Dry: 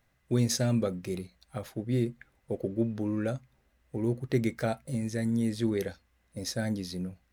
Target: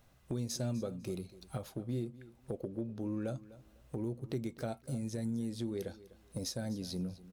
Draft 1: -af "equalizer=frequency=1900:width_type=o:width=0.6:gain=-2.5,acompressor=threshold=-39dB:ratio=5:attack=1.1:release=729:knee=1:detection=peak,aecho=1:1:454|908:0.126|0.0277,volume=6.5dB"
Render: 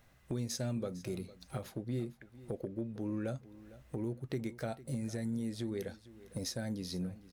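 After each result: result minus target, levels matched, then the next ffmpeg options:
echo 204 ms late; 2,000 Hz band +4.0 dB
-af "equalizer=frequency=1900:width_type=o:width=0.6:gain=-2.5,acompressor=threshold=-39dB:ratio=5:attack=1.1:release=729:knee=1:detection=peak,aecho=1:1:250|500:0.126|0.0277,volume=6.5dB"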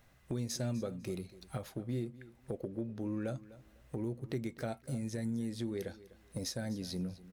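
2,000 Hz band +4.0 dB
-af "equalizer=frequency=1900:width_type=o:width=0.6:gain=-9.5,acompressor=threshold=-39dB:ratio=5:attack=1.1:release=729:knee=1:detection=peak,aecho=1:1:250|500:0.126|0.0277,volume=6.5dB"

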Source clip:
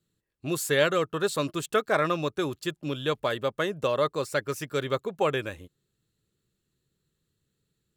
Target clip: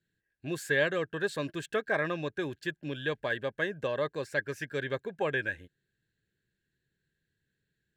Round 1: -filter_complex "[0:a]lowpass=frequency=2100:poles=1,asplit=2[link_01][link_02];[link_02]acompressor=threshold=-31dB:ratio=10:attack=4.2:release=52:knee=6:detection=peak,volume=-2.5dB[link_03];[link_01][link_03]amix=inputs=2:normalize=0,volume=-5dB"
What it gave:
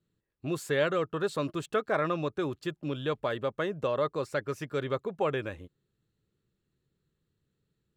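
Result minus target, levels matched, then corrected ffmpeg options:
2,000 Hz band −7.0 dB
-filter_complex "[0:a]lowpass=frequency=2100:poles=1,asplit=2[link_01][link_02];[link_02]acompressor=threshold=-31dB:ratio=10:attack=4.2:release=52:knee=6:detection=peak,highpass=frequency=1600:width_type=q:width=14,volume=-2.5dB[link_03];[link_01][link_03]amix=inputs=2:normalize=0,volume=-5dB"

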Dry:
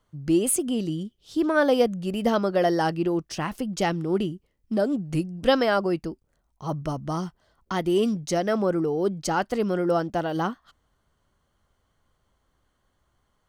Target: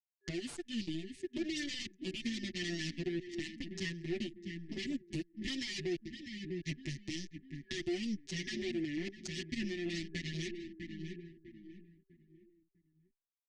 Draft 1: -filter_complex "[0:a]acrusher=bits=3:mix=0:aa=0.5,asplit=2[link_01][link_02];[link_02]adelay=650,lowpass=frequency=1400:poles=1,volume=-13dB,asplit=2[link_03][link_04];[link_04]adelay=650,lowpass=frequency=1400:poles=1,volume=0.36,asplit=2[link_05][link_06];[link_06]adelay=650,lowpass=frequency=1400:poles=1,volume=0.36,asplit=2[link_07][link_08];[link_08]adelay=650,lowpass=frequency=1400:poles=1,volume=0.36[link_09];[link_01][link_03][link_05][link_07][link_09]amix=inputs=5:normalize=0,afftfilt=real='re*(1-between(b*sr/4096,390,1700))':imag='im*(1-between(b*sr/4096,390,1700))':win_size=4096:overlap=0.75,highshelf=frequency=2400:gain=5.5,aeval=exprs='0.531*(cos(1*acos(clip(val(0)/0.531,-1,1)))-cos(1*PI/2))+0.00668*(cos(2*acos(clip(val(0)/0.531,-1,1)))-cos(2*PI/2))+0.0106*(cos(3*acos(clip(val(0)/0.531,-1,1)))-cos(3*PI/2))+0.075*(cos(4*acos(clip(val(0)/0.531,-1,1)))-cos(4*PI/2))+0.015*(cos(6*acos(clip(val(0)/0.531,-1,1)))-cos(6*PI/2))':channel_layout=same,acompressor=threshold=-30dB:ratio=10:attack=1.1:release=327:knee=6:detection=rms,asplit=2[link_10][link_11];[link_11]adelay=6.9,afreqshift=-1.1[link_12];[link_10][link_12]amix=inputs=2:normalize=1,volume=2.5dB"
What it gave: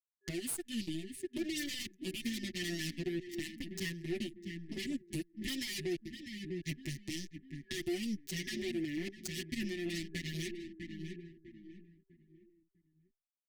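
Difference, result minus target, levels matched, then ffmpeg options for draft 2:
8,000 Hz band +4.0 dB
-filter_complex "[0:a]acrusher=bits=3:mix=0:aa=0.5,asplit=2[link_01][link_02];[link_02]adelay=650,lowpass=frequency=1400:poles=1,volume=-13dB,asplit=2[link_03][link_04];[link_04]adelay=650,lowpass=frequency=1400:poles=1,volume=0.36,asplit=2[link_05][link_06];[link_06]adelay=650,lowpass=frequency=1400:poles=1,volume=0.36,asplit=2[link_07][link_08];[link_08]adelay=650,lowpass=frequency=1400:poles=1,volume=0.36[link_09];[link_01][link_03][link_05][link_07][link_09]amix=inputs=5:normalize=0,afftfilt=real='re*(1-between(b*sr/4096,390,1700))':imag='im*(1-between(b*sr/4096,390,1700))':win_size=4096:overlap=0.75,highshelf=frequency=2400:gain=5.5,aeval=exprs='0.531*(cos(1*acos(clip(val(0)/0.531,-1,1)))-cos(1*PI/2))+0.00668*(cos(2*acos(clip(val(0)/0.531,-1,1)))-cos(2*PI/2))+0.0106*(cos(3*acos(clip(val(0)/0.531,-1,1)))-cos(3*PI/2))+0.075*(cos(4*acos(clip(val(0)/0.531,-1,1)))-cos(4*PI/2))+0.015*(cos(6*acos(clip(val(0)/0.531,-1,1)))-cos(6*PI/2))':channel_layout=same,acompressor=threshold=-30dB:ratio=10:attack=1.1:release=327:knee=6:detection=rms,lowpass=frequency=6800:width=0.5412,lowpass=frequency=6800:width=1.3066,asplit=2[link_10][link_11];[link_11]adelay=6.9,afreqshift=-1.1[link_12];[link_10][link_12]amix=inputs=2:normalize=1,volume=2.5dB"

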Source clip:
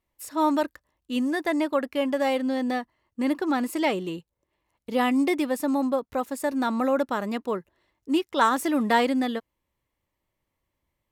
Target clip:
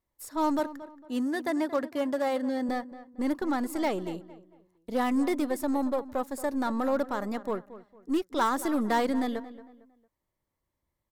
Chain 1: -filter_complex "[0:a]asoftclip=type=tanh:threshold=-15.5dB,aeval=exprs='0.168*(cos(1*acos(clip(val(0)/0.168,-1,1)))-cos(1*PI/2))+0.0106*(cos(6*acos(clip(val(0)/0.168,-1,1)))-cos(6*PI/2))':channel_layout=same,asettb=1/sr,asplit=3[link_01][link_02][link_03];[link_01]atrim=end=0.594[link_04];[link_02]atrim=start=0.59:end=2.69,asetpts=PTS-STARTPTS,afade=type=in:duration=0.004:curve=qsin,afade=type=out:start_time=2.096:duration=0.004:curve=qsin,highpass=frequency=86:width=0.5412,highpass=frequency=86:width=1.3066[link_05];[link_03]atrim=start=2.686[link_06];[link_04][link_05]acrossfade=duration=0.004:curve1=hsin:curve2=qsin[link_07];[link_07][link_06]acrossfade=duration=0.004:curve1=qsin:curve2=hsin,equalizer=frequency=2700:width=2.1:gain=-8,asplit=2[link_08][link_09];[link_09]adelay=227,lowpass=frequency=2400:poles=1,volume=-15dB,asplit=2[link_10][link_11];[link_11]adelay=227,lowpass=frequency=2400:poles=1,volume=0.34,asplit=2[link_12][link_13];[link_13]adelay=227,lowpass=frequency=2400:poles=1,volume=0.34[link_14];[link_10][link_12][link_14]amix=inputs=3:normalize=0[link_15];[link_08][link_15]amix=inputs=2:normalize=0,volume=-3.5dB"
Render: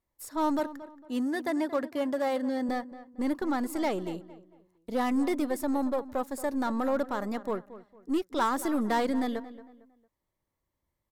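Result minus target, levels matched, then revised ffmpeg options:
soft clipping: distortion +9 dB
-filter_complex "[0:a]asoftclip=type=tanh:threshold=-9.5dB,aeval=exprs='0.168*(cos(1*acos(clip(val(0)/0.168,-1,1)))-cos(1*PI/2))+0.0106*(cos(6*acos(clip(val(0)/0.168,-1,1)))-cos(6*PI/2))':channel_layout=same,asettb=1/sr,asplit=3[link_01][link_02][link_03];[link_01]atrim=end=0.594[link_04];[link_02]atrim=start=0.59:end=2.69,asetpts=PTS-STARTPTS,afade=type=in:duration=0.004:curve=qsin,afade=type=out:start_time=2.096:duration=0.004:curve=qsin,highpass=frequency=86:width=0.5412,highpass=frequency=86:width=1.3066[link_05];[link_03]atrim=start=2.686[link_06];[link_04][link_05]acrossfade=duration=0.004:curve1=hsin:curve2=qsin[link_07];[link_07][link_06]acrossfade=duration=0.004:curve1=qsin:curve2=hsin,equalizer=frequency=2700:width=2.1:gain=-8,asplit=2[link_08][link_09];[link_09]adelay=227,lowpass=frequency=2400:poles=1,volume=-15dB,asplit=2[link_10][link_11];[link_11]adelay=227,lowpass=frequency=2400:poles=1,volume=0.34,asplit=2[link_12][link_13];[link_13]adelay=227,lowpass=frequency=2400:poles=1,volume=0.34[link_14];[link_10][link_12][link_14]amix=inputs=3:normalize=0[link_15];[link_08][link_15]amix=inputs=2:normalize=0,volume=-3.5dB"

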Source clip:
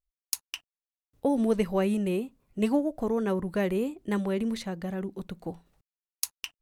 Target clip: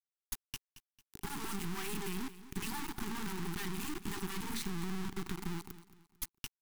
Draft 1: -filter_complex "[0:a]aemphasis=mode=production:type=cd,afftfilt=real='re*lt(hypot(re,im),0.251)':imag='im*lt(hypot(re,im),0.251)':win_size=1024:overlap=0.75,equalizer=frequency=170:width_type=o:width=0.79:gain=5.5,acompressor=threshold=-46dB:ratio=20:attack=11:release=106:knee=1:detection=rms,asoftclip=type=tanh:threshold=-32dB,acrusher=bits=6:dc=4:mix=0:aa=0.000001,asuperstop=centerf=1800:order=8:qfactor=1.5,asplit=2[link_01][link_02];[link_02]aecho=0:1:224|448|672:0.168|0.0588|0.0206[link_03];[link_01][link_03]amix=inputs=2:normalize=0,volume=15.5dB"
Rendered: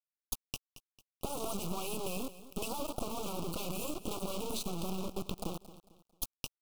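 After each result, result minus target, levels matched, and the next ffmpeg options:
2,000 Hz band −7.5 dB; soft clipping: distortion −10 dB; 125 Hz band −2.5 dB
-filter_complex "[0:a]aemphasis=mode=production:type=cd,afftfilt=real='re*lt(hypot(re,im),0.251)':imag='im*lt(hypot(re,im),0.251)':win_size=1024:overlap=0.75,equalizer=frequency=170:width_type=o:width=0.79:gain=5.5,acompressor=threshold=-46dB:ratio=20:attack=11:release=106:knee=1:detection=rms,asoftclip=type=tanh:threshold=-32dB,acrusher=bits=6:dc=4:mix=0:aa=0.000001,asuperstop=centerf=570:order=8:qfactor=1.5,asplit=2[link_01][link_02];[link_02]aecho=0:1:224|448|672:0.168|0.0588|0.0206[link_03];[link_01][link_03]amix=inputs=2:normalize=0,volume=15.5dB"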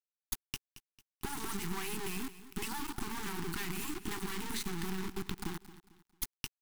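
soft clipping: distortion −10 dB; 125 Hz band −2.5 dB
-filter_complex "[0:a]aemphasis=mode=production:type=cd,afftfilt=real='re*lt(hypot(re,im),0.251)':imag='im*lt(hypot(re,im),0.251)':win_size=1024:overlap=0.75,equalizer=frequency=170:width_type=o:width=0.79:gain=5.5,acompressor=threshold=-46dB:ratio=20:attack=11:release=106:knee=1:detection=rms,asoftclip=type=tanh:threshold=-42dB,acrusher=bits=6:dc=4:mix=0:aa=0.000001,asuperstop=centerf=570:order=8:qfactor=1.5,asplit=2[link_01][link_02];[link_02]aecho=0:1:224|448|672:0.168|0.0588|0.0206[link_03];[link_01][link_03]amix=inputs=2:normalize=0,volume=15.5dB"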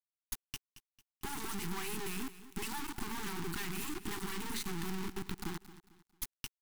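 125 Hz band −2.5 dB
-filter_complex "[0:a]aemphasis=mode=production:type=cd,afftfilt=real='re*lt(hypot(re,im),0.251)':imag='im*lt(hypot(re,im),0.251)':win_size=1024:overlap=0.75,equalizer=frequency=170:width_type=o:width=0.79:gain=16.5,acompressor=threshold=-46dB:ratio=20:attack=11:release=106:knee=1:detection=rms,asoftclip=type=tanh:threshold=-42dB,acrusher=bits=6:dc=4:mix=0:aa=0.000001,asuperstop=centerf=570:order=8:qfactor=1.5,asplit=2[link_01][link_02];[link_02]aecho=0:1:224|448|672:0.168|0.0588|0.0206[link_03];[link_01][link_03]amix=inputs=2:normalize=0,volume=15.5dB"

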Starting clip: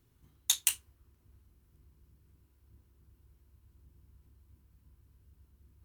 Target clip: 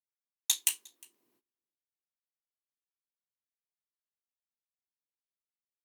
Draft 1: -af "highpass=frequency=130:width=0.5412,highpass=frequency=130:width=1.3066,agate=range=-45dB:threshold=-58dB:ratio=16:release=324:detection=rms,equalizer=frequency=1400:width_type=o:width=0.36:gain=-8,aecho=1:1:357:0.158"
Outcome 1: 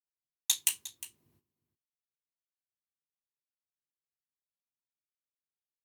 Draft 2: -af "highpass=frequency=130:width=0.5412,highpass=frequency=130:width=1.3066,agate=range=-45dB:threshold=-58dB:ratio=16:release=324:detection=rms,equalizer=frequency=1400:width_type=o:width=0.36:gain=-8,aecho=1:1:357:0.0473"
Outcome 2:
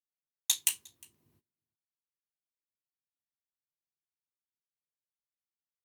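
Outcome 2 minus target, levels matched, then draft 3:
250 Hz band +4.0 dB
-af "highpass=frequency=280:width=0.5412,highpass=frequency=280:width=1.3066,agate=range=-45dB:threshold=-58dB:ratio=16:release=324:detection=rms,equalizer=frequency=1400:width_type=o:width=0.36:gain=-8,aecho=1:1:357:0.0473"

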